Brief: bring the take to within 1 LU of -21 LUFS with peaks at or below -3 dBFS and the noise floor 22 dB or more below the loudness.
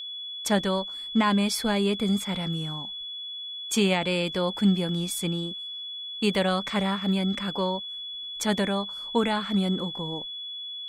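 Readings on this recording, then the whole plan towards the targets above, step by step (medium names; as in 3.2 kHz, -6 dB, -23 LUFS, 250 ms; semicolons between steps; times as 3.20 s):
steady tone 3.4 kHz; tone level -34 dBFS; loudness -27.0 LUFS; peak level -11.5 dBFS; loudness target -21.0 LUFS
-> band-stop 3.4 kHz, Q 30; trim +6 dB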